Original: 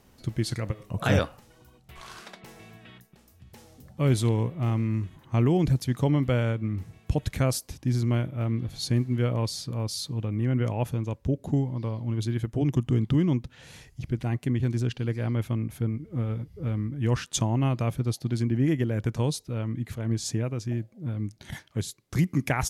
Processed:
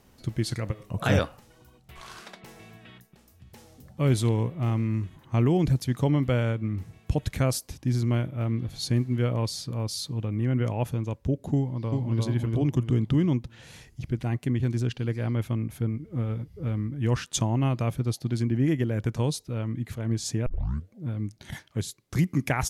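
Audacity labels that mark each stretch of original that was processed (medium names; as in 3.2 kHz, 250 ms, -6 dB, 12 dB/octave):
11.570000	12.210000	echo throw 350 ms, feedback 35%, level -1.5 dB
20.460000	20.460000	tape start 0.47 s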